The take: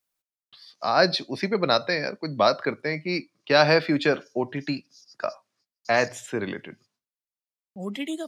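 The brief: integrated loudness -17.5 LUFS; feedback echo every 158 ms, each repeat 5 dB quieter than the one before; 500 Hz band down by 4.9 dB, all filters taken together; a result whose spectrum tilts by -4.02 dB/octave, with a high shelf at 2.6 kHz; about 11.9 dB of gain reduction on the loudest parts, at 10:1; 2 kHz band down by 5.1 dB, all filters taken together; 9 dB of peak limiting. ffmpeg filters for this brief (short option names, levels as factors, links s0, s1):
-af "equalizer=f=500:t=o:g=-6,equalizer=f=2000:t=o:g=-9,highshelf=f=2600:g=6,acompressor=threshold=0.0398:ratio=10,alimiter=limit=0.0668:level=0:latency=1,aecho=1:1:158|316|474|632|790|948|1106:0.562|0.315|0.176|0.0988|0.0553|0.031|0.0173,volume=7.5"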